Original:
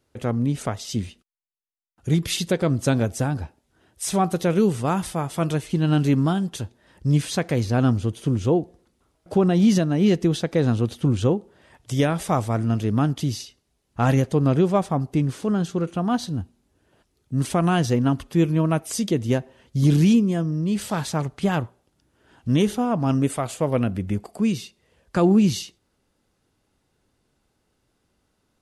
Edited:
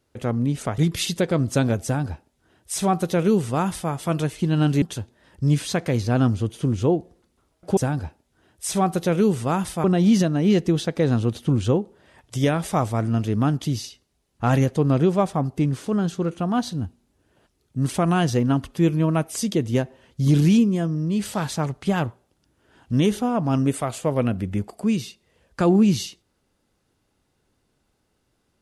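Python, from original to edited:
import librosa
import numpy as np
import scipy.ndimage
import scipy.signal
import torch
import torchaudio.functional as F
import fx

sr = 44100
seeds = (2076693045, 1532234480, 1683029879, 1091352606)

y = fx.edit(x, sr, fx.cut(start_s=0.78, length_s=1.31),
    fx.duplicate(start_s=3.15, length_s=2.07, to_s=9.4),
    fx.cut(start_s=6.13, length_s=0.32), tone=tone)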